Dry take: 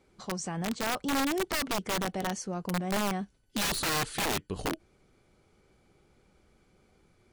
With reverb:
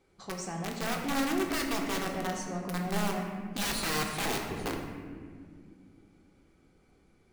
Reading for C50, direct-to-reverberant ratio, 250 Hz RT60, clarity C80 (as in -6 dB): 3.5 dB, 0.5 dB, 3.9 s, 5.0 dB